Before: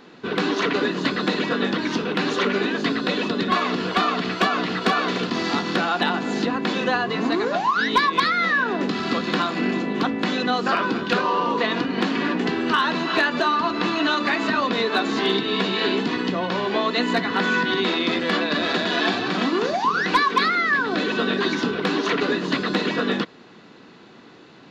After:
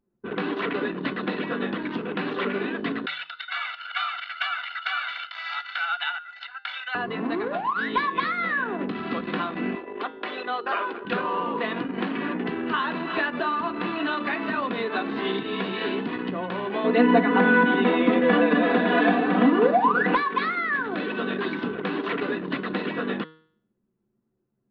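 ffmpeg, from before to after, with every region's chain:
-filter_complex "[0:a]asettb=1/sr,asplit=3[s0][s1][s2];[s0]atrim=end=3.064[s3];[s1]atrim=start=3.06:end=6.95,asetpts=PTS-STARTPTS,afade=t=in:d=0.004:c=qsin,afade=t=out:st=3.886:d=0.004:c=qsin,highpass=f=1200:w=0.5412,highpass=f=1200:w=1.3066,highshelf=f=6100:g=4.5,aecho=1:1:1.4:0.99,atrim=end_sample=171549[s4];[s2]atrim=start=6.946[s5];[s3][s4]acrossfade=d=0.004:c1=hsin:c2=qsin[s6];[s6][s5]acrossfade=d=0.004:c1=qsin:c2=hsin,asettb=1/sr,asplit=3[s7][s8][s9];[s7]atrim=end=9.754[s10];[s8]atrim=start=9.75:end=11.05,asetpts=PTS-STARTPTS,afade=t=in:d=0.004:c=qsin,afade=t=out:st=1.296:d=0.004:c=qsin,highpass=f=360:w=0.5412,highpass=f=360:w=1.3066,bandreject=f=7100:w=20,aecho=1:1:4.9:0.34,atrim=end_sample=57330[s11];[s9]atrim=start=11.046[s12];[s10][s11]acrossfade=d=0.004:c1=hsin:c2=qsin[s13];[s13][s12]acrossfade=d=0.004:c1=qsin:c2=hsin,asettb=1/sr,asplit=3[s14][s15][s16];[s14]atrim=end=16.844[s17];[s15]atrim=start=16.84:end=20.15,asetpts=PTS-STARTPTS,afade=t=in:d=0.004:c=qsin,afade=t=out:st=3.306:d=0.004:c=qsin,lowpass=3100,equalizer=f=410:w=0.49:g=8,aecho=1:1:4.1:0.84,atrim=end_sample=145971[s18];[s16]atrim=start=20.146[s19];[s17][s18]acrossfade=d=0.004:c1=hsin:c2=qsin[s20];[s20][s19]acrossfade=d=0.004:c1=qsin:c2=hsin,anlmdn=158,lowpass=f=3200:w=0.5412,lowpass=f=3200:w=1.3066,bandreject=f=158:t=h:w=4,bandreject=f=316:t=h:w=4,bandreject=f=474:t=h:w=4,bandreject=f=632:t=h:w=4,bandreject=f=790:t=h:w=4,bandreject=f=948:t=h:w=4,bandreject=f=1106:t=h:w=4,bandreject=f=1264:t=h:w=4,bandreject=f=1422:t=h:w=4,bandreject=f=1580:t=h:w=4,bandreject=f=1738:t=h:w=4,bandreject=f=1896:t=h:w=4,bandreject=f=2054:t=h:w=4,bandreject=f=2212:t=h:w=4,bandreject=f=2370:t=h:w=4,bandreject=f=2528:t=h:w=4,bandreject=f=2686:t=h:w=4,bandreject=f=2844:t=h:w=4,bandreject=f=3002:t=h:w=4,bandreject=f=3160:t=h:w=4,bandreject=f=3318:t=h:w=4,bandreject=f=3476:t=h:w=4,bandreject=f=3634:t=h:w=4,bandreject=f=3792:t=h:w=4,bandreject=f=3950:t=h:w=4,bandreject=f=4108:t=h:w=4,bandreject=f=4266:t=h:w=4,bandreject=f=4424:t=h:w=4,bandreject=f=4582:t=h:w=4,bandreject=f=4740:t=h:w=4,bandreject=f=4898:t=h:w=4,bandreject=f=5056:t=h:w=4,bandreject=f=5214:t=h:w=4,bandreject=f=5372:t=h:w=4,bandreject=f=5530:t=h:w=4,bandreject=f=5688:t=h:w=4,volume=0.562"

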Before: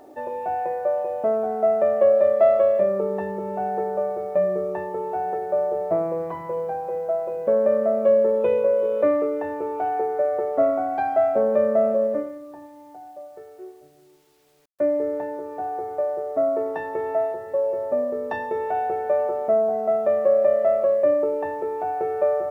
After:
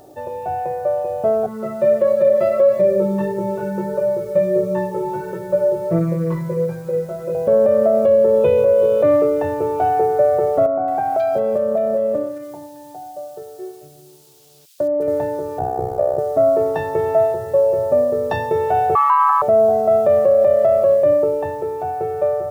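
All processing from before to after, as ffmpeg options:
-filter_complex "[0:a]asettb=1/sr,asplit=3[s0][s1][s2];[s0]atrim=end=1.464[s3];[s1]atrim=start=1.46:end=7.35,asetpts=PTS-STARTPTS,afade=t=in:d=0.004:c=qsin,afade=t=out:st=5.886:d=0.004:c=qsin,aecho=1:1:5.5:0.89,atrim=end_sample=259749,flanger=delay=17:depth=2.4:speed=1.5,asuperstop=centerf=740:order=4:qfactor=2.8[s4];[s2]atrim=start=7.346[s5];[s3][s4]acrossfade=d=0.004:c1=hsin:c2=qsin[s6];[s6][s5]acrossfade=d=0.004:c1=qsin:c2=hsin,asettb=1/sr,asplit=3[s7][s8][s9];[s7]atrim=end=10.664[s10];[s8]atrim=start=10.66:end=15.08,asetpts=PTS-STARTPTS,afade=t=in:d=0.004:c=qsin,afade=t=out:st=4.416:d=0.004:c=qsin,highpass=160,acompressor=threshold=0.0708:ratio=6:attack=3.2:release=140:knee=1:detection=peak,acrossover=split=1700[s11][s12];[s12]adelay=220[s13];[s11][s13]amix=inputs=2:normalize=0,atrim=end_sample=194922[s14];[s9]atrim=start=15.076[s15];[s10][s14]acrossfade=d=0.004:c1=hsin:c2=qsin[s16];[s16][s15]acrossfade=d=0.004:c1=qsin:c2=hsin,asettb=1/sr,asplit=3[s17][s18][s19];[s17]atrim=end=15.594[s20];[s18]atrim=start=15.59:end=16.19,asetpts=PTS-STARTPTS,afade=t=in:d=0.004:c=qsin,afade=t=out:st=0.596:d=0.004:c=qsin,lowshelf=f=370:g=10,bandreject=f=1900:w=27,tremolo=f=64:d=0.947[s21];[s19]atrim=start=16.186[s22];[s20][s21]acrossfade=d=0.004:c1=hsin:c2=qsin[s23];[s23][s22]acrossfade=d=0.004:c1=qsin:c2=hsin,asettb=1/sr,asplit=3[s24][s25][s26];[s24]atrim=end=18.954[s27];[s25]atrim=start=18.95:end=19.42,asetpts=PTS-STARTPTS,afade=t=in:d=0.004:c=qsin,afade=t=out:st=0.466:d=0.004:c=qsin,afreqshift=410,highpass=f=1200:t=q:w=3.9[s28];[s26]atrim=start=19.416[s29];[s27][s28]acrossfade=d=0.004:c1=hsin:c2=qsin[s30];[s30][s29]acrossfade=d=0.004:c1=qsin:c2=hsin,equalizer=f=125:t=o:w=1:g=9,equalizer=f=250:t=o:w=1:g=-12,equalizer=f=500:t=o:w=1:g=-4,equalizer=f=1000:t=o:w=1:g=-8,equalizer=f=2000:t=o:w=1:g=-11,dynaudnorm=f=150:g=21:m=1.88,alimiter=level_in=6.68:limit=0.891:release=50:level=0:latency=1,volume=0.501"

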